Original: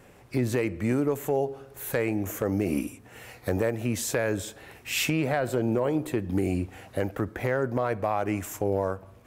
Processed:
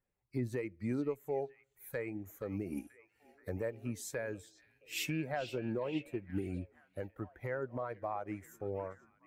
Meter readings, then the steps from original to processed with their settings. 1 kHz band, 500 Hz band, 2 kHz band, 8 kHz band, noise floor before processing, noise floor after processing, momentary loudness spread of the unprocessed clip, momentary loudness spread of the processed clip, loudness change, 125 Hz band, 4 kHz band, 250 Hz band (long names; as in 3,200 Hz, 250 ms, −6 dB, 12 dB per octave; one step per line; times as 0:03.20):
−11.5 dB, −11.5 dB, −12.0 dB, −13.5 dB, −52 dBFS, −78 dBFS, 7 LU, 9 LU, −11.5 dB, −12.0 dB, −11.0 dB, −11.5 dB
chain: spectral dynamics exaggerated over time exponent 1.5
echo through a band-pass that steps 479 ms, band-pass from 3,700 Hz, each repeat −0.7 octaves, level −6 dB
expander for the loud parts 1.5 to 1, over −45 dBFS
level −7 dB